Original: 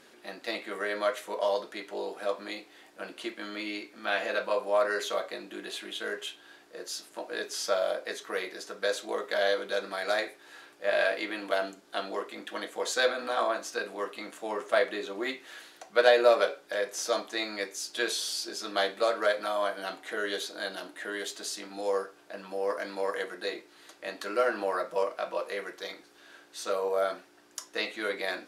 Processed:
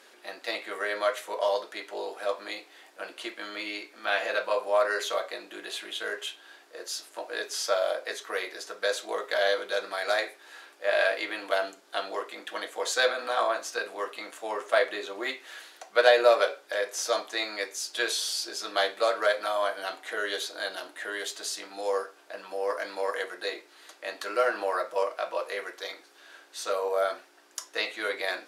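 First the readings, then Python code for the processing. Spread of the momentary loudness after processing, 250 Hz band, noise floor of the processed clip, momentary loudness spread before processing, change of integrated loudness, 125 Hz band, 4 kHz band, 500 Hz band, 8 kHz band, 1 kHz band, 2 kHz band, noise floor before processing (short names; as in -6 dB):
13 LU, -4.0 dB, -56 dBFS, 12 LU, +1.5 dB, n/a, +2.5 dB, +1.0 dB, +2.5 dB, +2.0 dB, +2.5 dB, -57 dBFS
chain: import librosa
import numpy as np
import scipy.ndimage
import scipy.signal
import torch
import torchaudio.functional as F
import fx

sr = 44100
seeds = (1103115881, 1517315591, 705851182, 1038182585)

y = scipy.signal.sosfilt(scipy.signal.butter(2, 440.0, 'highpass', fs=sr, output='sos'), x)
y = y * librosa.db_to_amplitude(2.5)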